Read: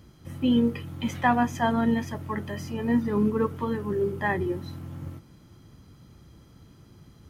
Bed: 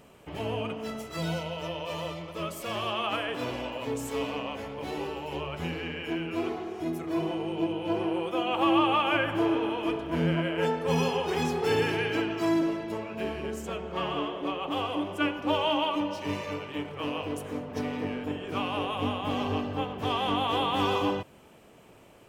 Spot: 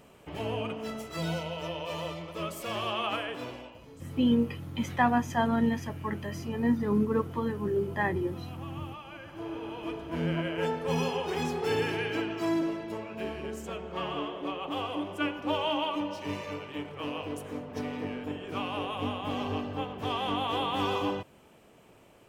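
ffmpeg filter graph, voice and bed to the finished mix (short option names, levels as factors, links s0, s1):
-filter_complex "[0:a]adelay=3750,volume=0.75[s0];[1:a]volume=6.31,afade=t=out:st=3.07:d=0.75:silence=0.112202,afade=t=in:st=9.2:d=1.2:silence=0.141254[s1];[s0][s1]amix=inputs=2:normalize=0"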